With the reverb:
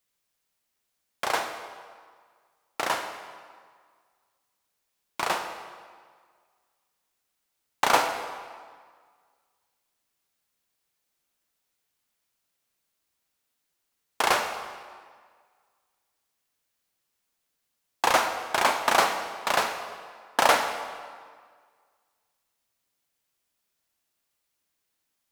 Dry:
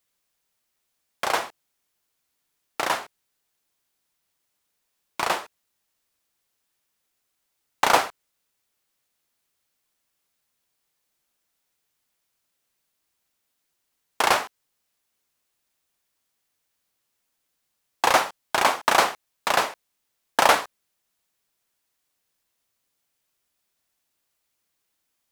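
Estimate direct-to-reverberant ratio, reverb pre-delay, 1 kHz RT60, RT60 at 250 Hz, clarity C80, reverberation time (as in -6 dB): 6.5 dB, 30 ms, 1.8 s, 1.7 s, 8.5 dB, 1.8 s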